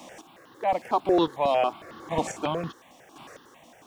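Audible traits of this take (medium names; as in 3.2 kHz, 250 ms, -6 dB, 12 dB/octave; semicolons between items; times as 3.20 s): chopped level 0.95 Hz, depth 60%, duty 20%; a quantiser's noise floor 12-bit, dither none; notches that jump at a steady rate 11 Hz 410–2300 Hz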